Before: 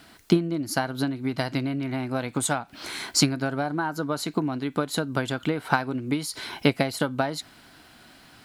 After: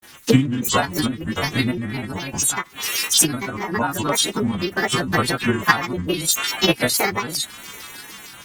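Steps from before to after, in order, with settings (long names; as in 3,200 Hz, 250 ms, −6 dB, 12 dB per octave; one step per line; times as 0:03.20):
every partial snapped to a pitch grid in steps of 2 semitones
granular cloud, spray 38 ms, pitch spread up and down by 7 semitones
sample-and-hold tremolo
in parallel at +1.5 dB: downward compressor 5 to 1, threshold −42 dBFS, peak gain reduction 23.5 dB
on the sum: auto-filter notch square 6.6 Hz 600–4,900 Hz
level +6.5 dB
Opus 16 kbit/s 48,000 Hz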